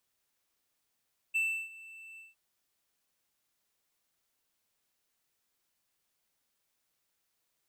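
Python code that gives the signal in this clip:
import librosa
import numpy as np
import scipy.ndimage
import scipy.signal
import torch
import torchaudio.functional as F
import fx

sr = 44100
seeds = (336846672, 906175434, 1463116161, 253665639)

y = fx.adsr_tone(sr, wave='triangle', hz=2660.0, attack_ms=19.0, decay_ms=327.0, sustain_db=-21.0, held_s=0.84, release_ms=167.0, level_db=-24.0)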